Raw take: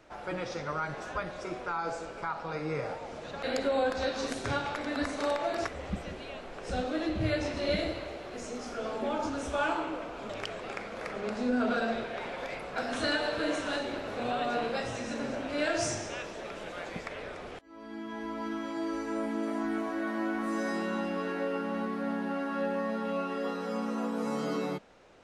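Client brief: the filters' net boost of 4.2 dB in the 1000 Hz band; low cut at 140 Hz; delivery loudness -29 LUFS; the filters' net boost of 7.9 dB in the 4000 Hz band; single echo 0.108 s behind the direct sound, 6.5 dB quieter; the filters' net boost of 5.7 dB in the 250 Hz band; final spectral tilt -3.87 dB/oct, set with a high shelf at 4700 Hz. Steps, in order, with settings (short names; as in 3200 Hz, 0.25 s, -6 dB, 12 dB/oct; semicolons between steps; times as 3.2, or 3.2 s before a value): HPF 140 Hz; bell 250 Hz +7 dB; bell 1000 Hz +4.5 dB; bell 4000 Hz +6 dB; high shelf 4700 Hz +7 dB; echo 0.108 s -6.5 dB; gain -1 dB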